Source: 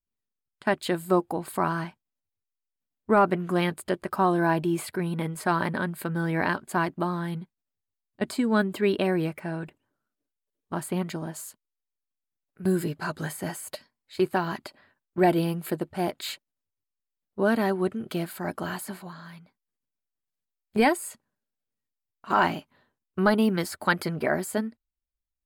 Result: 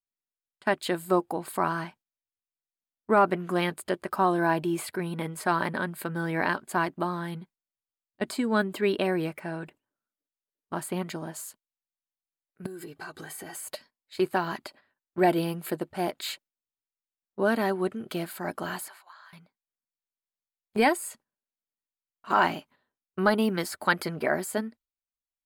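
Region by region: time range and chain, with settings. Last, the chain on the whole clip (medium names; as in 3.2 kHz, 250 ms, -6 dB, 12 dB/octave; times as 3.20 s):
12.66–13.55 s: comb 2.6 ms, depth 44% + compression 12:1, threshold -35 dBFS
18.88–19.33 s: ladder high-pass 690 Hz, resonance 20% + treble shelf 10 kHz -4.5 dB
whole clip: gate -52 dBFS, range -9 dB; bass shelf 170 Hz -9 dB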